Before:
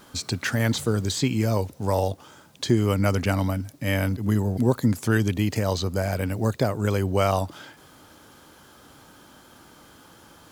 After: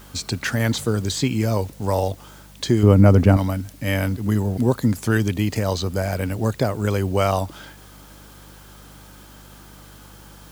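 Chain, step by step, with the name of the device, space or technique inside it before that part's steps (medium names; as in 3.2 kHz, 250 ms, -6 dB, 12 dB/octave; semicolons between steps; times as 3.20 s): 2.83–3.37 s: tilt shelf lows +9 dB, about 1.3 kHz; video cassette with head-switching buzz (mains buzz 50 Hz, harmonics 4, -49 dBFS -4 dB/octave; white noise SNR 31 dB); trim +2 dB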